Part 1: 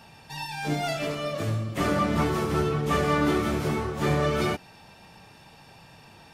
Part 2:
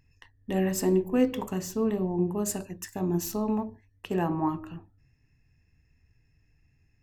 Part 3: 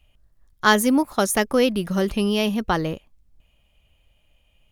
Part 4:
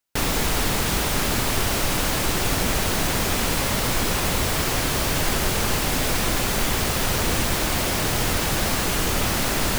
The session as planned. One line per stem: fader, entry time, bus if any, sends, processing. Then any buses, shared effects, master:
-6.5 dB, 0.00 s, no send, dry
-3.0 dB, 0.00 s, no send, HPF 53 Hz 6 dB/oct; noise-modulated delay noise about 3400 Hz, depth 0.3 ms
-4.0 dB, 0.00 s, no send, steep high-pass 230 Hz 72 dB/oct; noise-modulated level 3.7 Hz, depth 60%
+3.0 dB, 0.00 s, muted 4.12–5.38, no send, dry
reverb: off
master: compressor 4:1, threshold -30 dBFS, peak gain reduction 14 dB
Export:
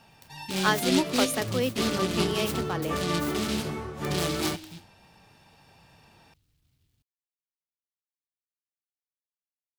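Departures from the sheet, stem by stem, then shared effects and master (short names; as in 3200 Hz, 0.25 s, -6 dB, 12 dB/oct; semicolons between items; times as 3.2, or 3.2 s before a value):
stem 4: muted; master: missing compressor 4:1, threshold -30 dBFS, peak gain reduction 14 dB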